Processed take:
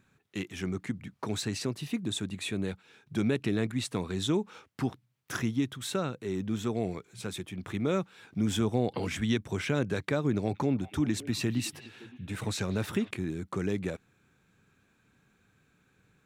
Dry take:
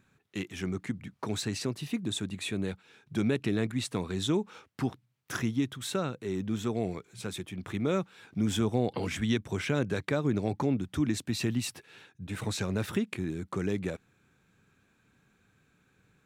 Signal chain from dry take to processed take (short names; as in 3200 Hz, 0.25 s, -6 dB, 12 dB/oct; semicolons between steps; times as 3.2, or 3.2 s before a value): 10.35–13.11 delay with a stepping band-pass 0.188 s, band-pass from 2500 Hz, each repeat -1.4 oct, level -10 dB